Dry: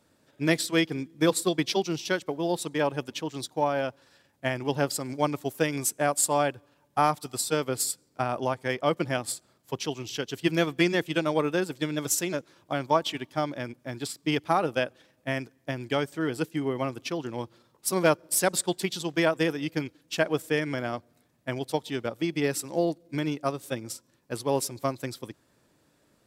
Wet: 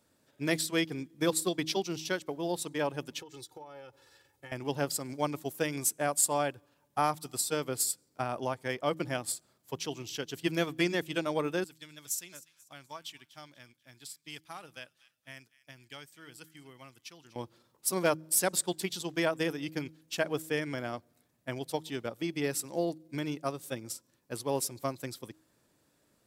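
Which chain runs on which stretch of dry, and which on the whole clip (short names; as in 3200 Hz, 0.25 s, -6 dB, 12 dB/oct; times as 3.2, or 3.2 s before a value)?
3.19–4.52 comb 2.3 ms, depth 95% + compressor 16:1, threshold -38 dBFS
11.64–17.36 passive tone stack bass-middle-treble 5-5-5 + thin delay 0.244 s, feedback 35%, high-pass 1900 Hz, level -17 dB
whole clip: high shelf 6800 Hz +6.5 dB; de-hum 158 Hz, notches 2; gain -5.5 dB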